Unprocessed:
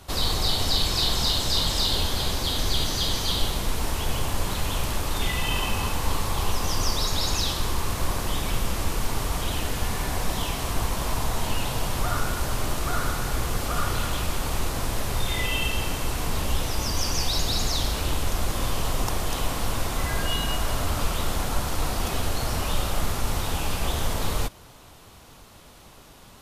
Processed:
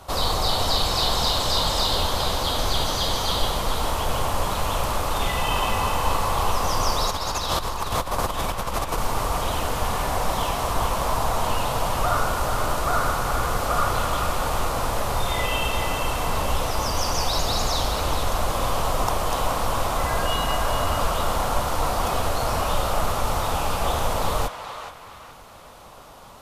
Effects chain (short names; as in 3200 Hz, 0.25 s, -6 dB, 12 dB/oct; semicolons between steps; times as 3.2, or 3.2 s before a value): 7.09–8.98 negative-ratio compressor -28 dBFS, ratio -1; band shelf 800 Hz +8 dB; narrowing echo 0.424 s, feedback 43%, band-pass 1900 Hz, level -5.5 dB